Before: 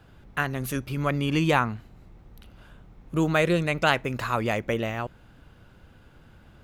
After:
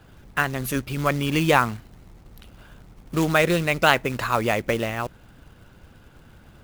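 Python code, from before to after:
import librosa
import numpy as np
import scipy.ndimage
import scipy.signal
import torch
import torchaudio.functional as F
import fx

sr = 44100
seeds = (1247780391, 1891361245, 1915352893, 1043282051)

y = fx.quant_float(x, sr, bits=2)
y = fx.hpss(y, sr, part='percussive', gain_db=4)
y = y * 10.0 ** (1.0 / 20.0)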